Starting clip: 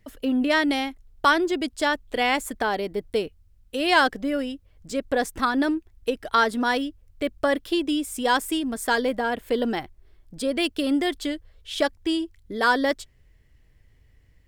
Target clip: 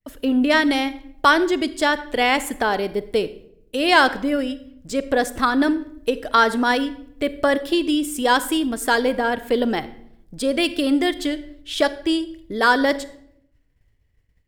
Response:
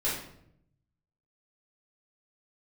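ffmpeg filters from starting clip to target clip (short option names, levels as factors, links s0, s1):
-filter_complex "[0:a]agate=range=0.0224:threshold=0.00447:ratio=3:detection=peak,asplit=2[s0][s1];[1:a]atrim=start_sample=2205,adelay=37[s2];[s1][s2]afir=irnorm=-1:irlink=0,volume=0.075[s3];[s0][s3]amix=inputs=2:normalize=0,volume=1.58"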